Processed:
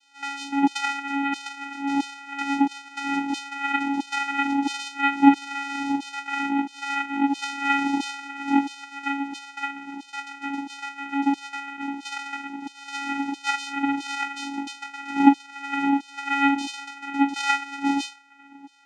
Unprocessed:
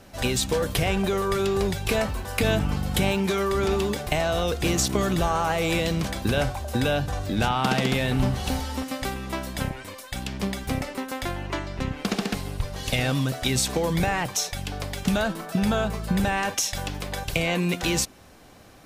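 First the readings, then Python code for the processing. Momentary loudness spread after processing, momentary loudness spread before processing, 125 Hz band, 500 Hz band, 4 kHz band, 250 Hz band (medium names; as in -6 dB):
12 LU, 8 LU, under -25 dB, under -20 dB, -5.0 dB, +3.5 dB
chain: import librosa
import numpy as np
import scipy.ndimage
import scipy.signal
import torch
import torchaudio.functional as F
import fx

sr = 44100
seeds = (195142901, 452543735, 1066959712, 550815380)

y = fx.notch(x, sr, hz=1800.0, q=8.7)
y = fx.room_shoebox(y, sr, seeds[0], volume_m3=230.0, walls='furnished', distance_m=3.7)
y = fx.filter_lfo_highpass(y, sr, shape='saw_down', hz=1.5, low_hz=550.0, high_hz=3700.0, q=7.2)
y = fx.vocoder(y, sr, bands=4, carrier='square', carrier_hz=279.0)
y = fx.peak_eq(y, sr, hz=2400.0, db=5.0, octaves=0.53)
y = y * librosa.db_to_amplitude(-9.0)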